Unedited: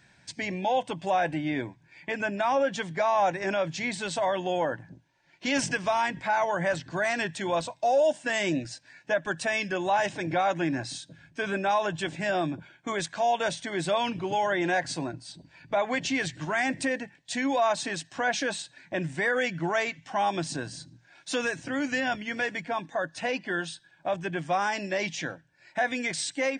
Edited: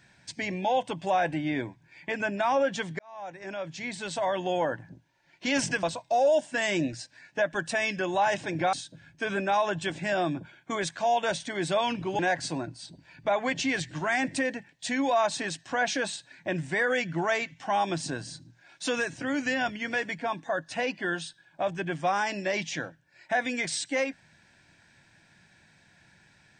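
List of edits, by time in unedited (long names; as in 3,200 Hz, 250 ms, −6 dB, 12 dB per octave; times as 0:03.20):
0:02.99–0:04.48: fade in
0:05.83–0:07.55: remove
0:10.45–0:10.90: remove
0:14.36–0:14.65: remove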